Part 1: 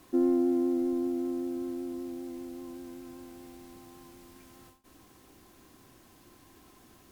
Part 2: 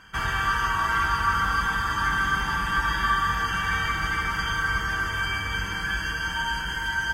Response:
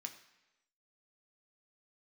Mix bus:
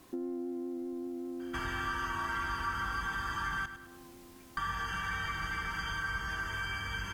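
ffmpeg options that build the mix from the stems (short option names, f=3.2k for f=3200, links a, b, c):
-filter_complex "[0:a]acompressor=threshold=-33dB:ratio=1.5,volume=-0.5dB[a];[1:a]adelay=1400,volume=-1dB,asplit=3[b][c][d];[b]atrim=end=3.66,asetpts=PTS-STARTPTS,afade=t=out:st=3.656:d=0.004:c=hsin[e];[c]atrim=start=3.66:end=4.57,asetpts=PTS-STARTPTS,volume=0[f];[d]atrim=start=4.57,asetpts=PTS-STARTPTS,afade=t=in:d=0.004:c=hsin[g];[e][f][g]concat=n=3:v=0:a=1,asplit=2[h][i];[i]volume=-13.5dB,aecho=0:1:104|208|312|416:1|0.31|0.0961|0.0298[j];[a][h][j]amix=inputs=3:normalize=0,acompressor=threshold=-41dB:ratio=2"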